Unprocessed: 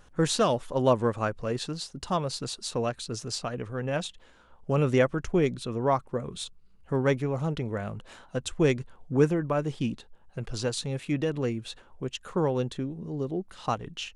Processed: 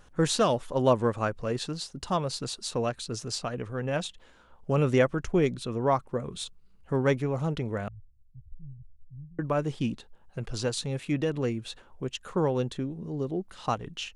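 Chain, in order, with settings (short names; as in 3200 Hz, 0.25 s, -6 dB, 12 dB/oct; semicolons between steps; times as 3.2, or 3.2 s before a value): 7.88–9.39 inverse Chebyshev low-pass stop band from 550 Hz, stop band 80 dB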